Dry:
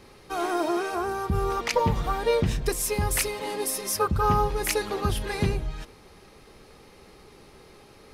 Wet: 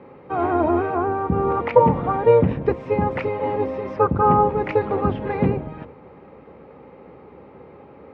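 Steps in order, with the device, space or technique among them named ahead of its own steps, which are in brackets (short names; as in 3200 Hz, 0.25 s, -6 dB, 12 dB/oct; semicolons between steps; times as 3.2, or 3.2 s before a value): sub-octave bass pedal (octaver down 2 oct, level +2 dB; speaker cabinet 84–2100 Hz, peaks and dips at 95 Hz -4 dB, 180 Hz +3 dB, 270 Hz +6 dB, 520 Hz +9 dB, 880 Hz +5 dB, 1700 Hz -5 dB); gain +4 dB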